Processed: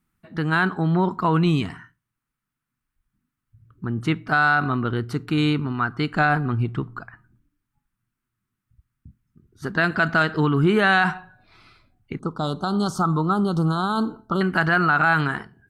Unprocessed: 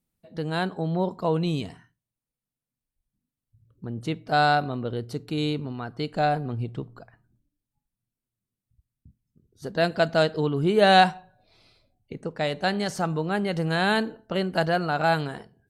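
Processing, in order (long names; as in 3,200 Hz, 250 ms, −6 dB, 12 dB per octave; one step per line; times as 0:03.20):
drawn EQ curve 360 Hz 0 dB, 530 Hz −12 dB, 1,300 Hz +11 dB, 4,000 Hz −5 dB
brickwall limiter −16.5 dBFS, peak gain reduction 12 dB
0:12.19–0:14.41: elliptic band-stop filter 1,300–3,400 Hz, stop band 40 dB
level +7 dB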